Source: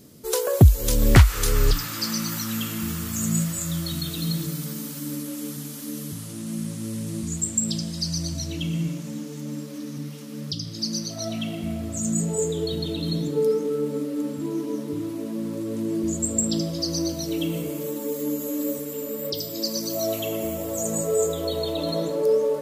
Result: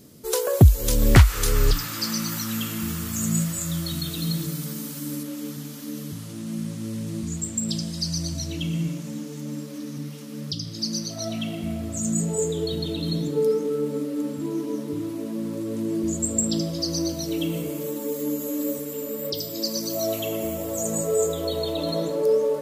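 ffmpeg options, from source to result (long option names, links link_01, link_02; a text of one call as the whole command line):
ffmpeg -i in.wav -filter_complex "[0:a]asettb=1/sr,asplit=3[link_01][link_02][link_03];[link_01]atrim=end=5.234[link_04];[link_02]atrim=start=5.23:end=7.69,asetpts=PTS-STARTPTS,afade=type=in:duration=0.004:curve=qsin,afade=type=out:start_time=2.456:duration=0.004:curve=qsin,equalizer=frequency=10000:width=1:gain=-7[link_05];[link_03]atrim=start=7.686[link_06];[link_04][link_05]acrossfade=duration=0.004:curve1=hsin:curve2=qsin[link_07];[link_07][link_06]acrossfade=duration=0.004:curve1=qsin:curve2=hsin" out.wav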